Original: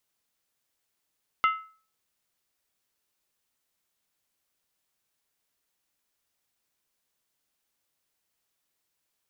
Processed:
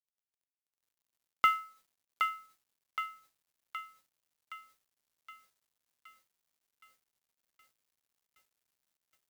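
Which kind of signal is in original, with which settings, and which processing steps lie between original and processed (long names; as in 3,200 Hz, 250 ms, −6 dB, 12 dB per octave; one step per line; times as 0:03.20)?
struck skin, lowest mode 1,300 Hz, decay 0.41 s, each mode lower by 7 dB, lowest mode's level −17 dB
high-pass filter 74 Hz 12 dB per octave
feedback echo with a high-pass in the loop 769 ms, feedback 61%, high-pass 770 Hz, level −4 dB
log-companded quantiser 6 bits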